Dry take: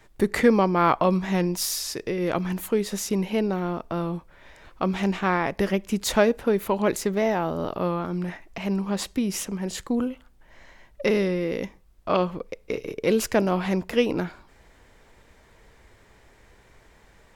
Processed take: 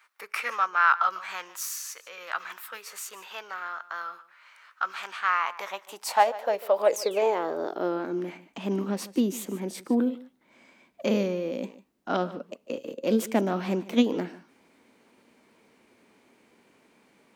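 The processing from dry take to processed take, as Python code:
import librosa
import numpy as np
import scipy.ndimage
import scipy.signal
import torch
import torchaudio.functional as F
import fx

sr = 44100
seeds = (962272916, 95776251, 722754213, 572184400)

p1 = x + fx.echo_single(x, sr, ms=149, db=-18.0, dry=0)
p2 = fx.spec_paint(p1, sr, seeds[0], shape='fall', start_s=6.84, length_s=0.37, low_hz=1800.0, high_hz=9500.0, level_db=-29.0)
p3 = fx.formant_shift(p2, sr, semitones=3)
p4 = fx.filter_sweep_highpass(p3, sr, from_hz=1300.0, to_hz=240.0, start_s=5.19, end_s=8.51, q=3.2)
y = F.gain(torch.from_numpy(p4), -6.5).numpy()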